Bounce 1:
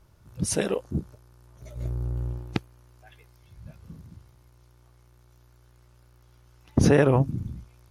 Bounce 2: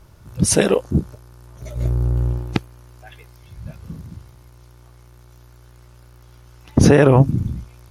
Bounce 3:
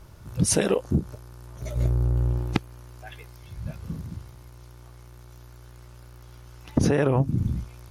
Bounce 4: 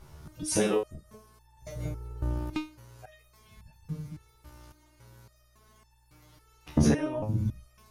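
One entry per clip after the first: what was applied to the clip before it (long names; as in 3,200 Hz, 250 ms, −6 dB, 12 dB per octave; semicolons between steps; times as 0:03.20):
boost into a limiter +11.5 dB; level −1 dB
downward compressor 6 to 1, threshold −18 dBFS, peak gain reduction 10.5 dB
step-sequenced resonator 3.6 Hz 75–890 Hz; level +7 dB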